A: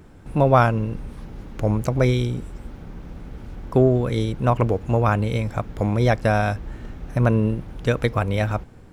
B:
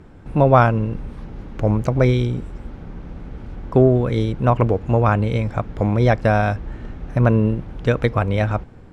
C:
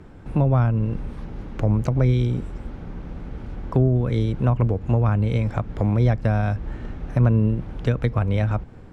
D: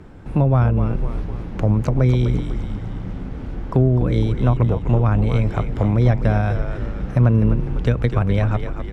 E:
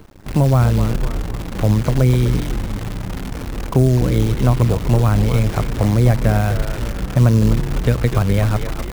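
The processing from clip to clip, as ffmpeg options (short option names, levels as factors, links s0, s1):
-af "aemphasis=mode=reproduction:type=50fm,volume=1.33"
-filter_complex "[0:a]acrossover=split=220[s0][s1];[s1]acompressor=threshold=0.0501:ratio=4[s2];[s0][s2]amix=inputs=2:normalize=0"
-filter_complex "[0:a]asplit=8[s0][s1][s2][s3][s4][s5][s6][s7];[s1]adelay=251,afreqshift=-78,volume=0.398[s8];[s2]adelay=502,afreqshift=-156,volume=0.226[s9];[s3]adelay=753,afreqshift=-234,volume=0.129[s10];[s4]adelay=1004,afreqshift=-312,volume=0.0741[s11];[s5]adelay=1255,afreqshift=-390,volume=0.0422[s12];[s6]adelay=1506,afreqshift=-468,volume=0.024[s13];[s7]adelay=1757,afreqshift=-546,volume=0.0136[s14];[s0][s8][s9][s10][s11][s12][s13][s14]amix=inputs=8:normalize=0,volume=1.33"
-af "acrusher=bits=6:dc=4:mix=0:aa=0.000001,volume=1.26"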